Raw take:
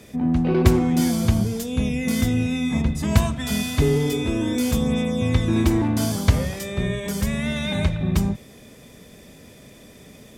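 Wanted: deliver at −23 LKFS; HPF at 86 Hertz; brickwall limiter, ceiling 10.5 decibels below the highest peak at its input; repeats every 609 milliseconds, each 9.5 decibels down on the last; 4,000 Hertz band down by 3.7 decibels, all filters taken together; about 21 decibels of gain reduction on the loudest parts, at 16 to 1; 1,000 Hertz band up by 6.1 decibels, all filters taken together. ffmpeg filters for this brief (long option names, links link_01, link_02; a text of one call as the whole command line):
ffmpeg -i in.wav -af "highpass=86,equalizer=frequency=1000:width_type=o:gain=8,equalizer=frequency=4000:width_type=o:gain=-5,acompressor=threshold=-33dB:ratio=16,alimiter=level_in=8dB:limit=-24dB:level=0:latency=1,volume=-8dB,aecho=1:1:609|1218|1827|2436:0.335|0.111|0.0365|0.012,volume=17.5dB" out.wav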